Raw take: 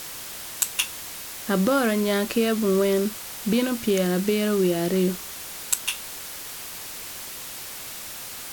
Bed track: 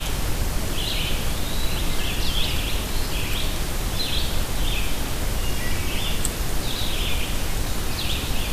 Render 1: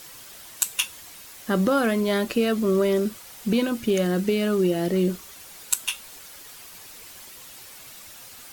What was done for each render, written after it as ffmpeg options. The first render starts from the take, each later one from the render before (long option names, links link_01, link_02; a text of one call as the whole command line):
ffmpeg -i in.wav -af "afftdn=noise_reduction=9:noise_floor=-37" out.wav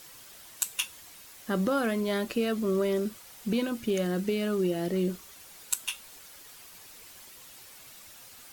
ffmpeg -i in.wav -af "volume=-6dB" out.wav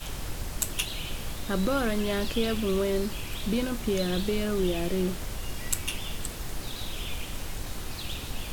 ffmpeg -i in.wav -i bed.wav -filter_complex "[1:a]volume=-10.5dB[link_01];[0:a][link_01]amix=inputs=2:normalize=0" out.wav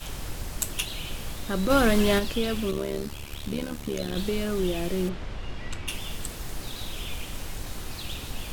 ffmpeg -i in.wav -filter_complex "[0:a]asplit=3[link_01][link_02][link_03];[link_01]afade=type=out:start_time=1.69:duration=0.02[link_04];[link_02]acontrast=73,afade=type=in:start_time=1.69:duration=0.02,afade=type=out:start_time=2.18:duration=0.02[link_05];[link_03]afade=type=in:start_time=2.18:duration=0.02[link_06];[link_04][link_05][link_06]amix=inputs=3:normalize=0,asplit=3[link_07][link_08][link_09];[link_07]afade=type=out:start_time=2.7:duration=0.02[link_10];[link_08]tremolo=f=72:d=0.857,afade=type=in:start_time=2.7:duration=0.02,afade=type=out:start_time=4.15:duration=0.02[link_11];[link_09]afade=type=in:start_time=4.15:duration=0.02[link_12];[link_10][link_11][link_12]amix=inputs=3:normalize=0,asplit=3[link_13][link_14][link_15];[link_13]afade=type=out:start_time=5.08:duration=0.02[link_16];[link_14]lowpass=3300,afade=type=in:start_time=5.08:duration=0.02,afade=type=out:start_time=5.87:duration=0.02[link_17];[link_15]afade=type=in:start_time=5.87:duration=0.02[link_18];[link_16][link_17][link_18]amix=inputs=3:normalize=0" out.wav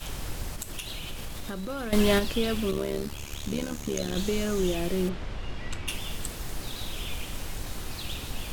ffmpeg -i in.wav -filter_complex "[0:a]asettb=1/sr,asplit=3[link_01][link_02][link_03];[link_01]atrim=end=0.544[link_04];[link_02]atrim=start=0.54:end=1.93,asetpts=PTS-STARTPTS,afade=type=in:duration=0.004:curve=qsin,afade=type=out:start_time=1.386:duration=0.004:curve=qsin,acompressor=threshold=-31dB:ratio=6:attack=3.2:release=140:knee=1:detection=peak[link_05];[link_03]atrim=start=1.926[link_06];[link_04][link_05]acrossfade=duration=0.004:curve1=hsin:curve2=qsin[link_07];[link_07][link_06]acrossfade=duration=0.004:curve1=qsin:curve2=hsin,asettb=1/sr,asplit=3[link_08][link_09][link_10];[link_08]atrim=end=3.184[link_11];[link_09]atrim=start=3.18:end=4.75,asetpts=PTS-STARTPTS,afade=type=in:duration=0.004:curve=qsin,afade=type=out:start_time=1.566:duration=0.004:curve=qsin,equalizer=frequency=6600:width=4:gain=9.5[link_12];[link_10]atrim=start=4.746[link_13];[link_11][link_12]acrossfade=duration=0.004:curve1=hsin:curve2=qsin[link_14];[link_14][link_13]acrossfade=duration=0.004:curve1=qsin:curve2=hsin" out.wav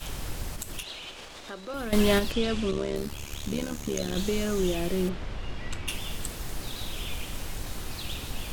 ffmpeg -i in.wav -filter_complex "[0:a]asettb=1/sr,asplit=3[link_01][link_02][link_03];[link_01]atrim=end=0.834[link_04];[link_02]atrim=start=0.83:end=1.74,asetpts=PTS-STARTPTS,afade=type=in:duration=0.004:curve=qsin,afade=type=out:start_time=0.906:duration=0.004:curve=qsin,acrossover=split=310 7800:gain=0.158 1 0.112[link_05][link_06][link_07];[link_05][link_06][link_07]amix=inputs=3:normalize=0[link_08];[link_03]atrim=start=1.736[link_09];[link_04][link_08]acrossfade=duration=0.004:curve1=hsin:curve2=qsin[link_10];[link_10][link_09]acrossfade=duration=0.004:curve1=qsin:curve2=hsin,asettb=1/sr,asplit=3[link_11][link_12][link_13];[link_11]atrim=end=2.324[link_14];[link_12]atrim=start=2.32:end=2.96,asetpts=PTS-STARTPTS,afade=type=in:duration=0.004:curve=qsin,afade=type=out:start_time=0.636:duration=0.004:curve=qsin,lowpass=frequency=8000:width=0.5412,lowpass=frequency=8000:width=1.3066[link_15];[link_13]atrim=start=2.956[link_16];[link_14][link_15]acrossfade=duration=0.004:curve1=hsin:curve2=qsin[link_17];[link_17][link_16]acrossfade=duration=0.004:curve1=qsin:curve2=hsin" out.wav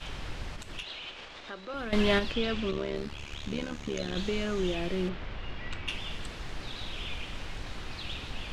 ffmpeg -i in.wav -af "lowpass=3100,tiltshelf=frequency=1400:gain=-4" out.wav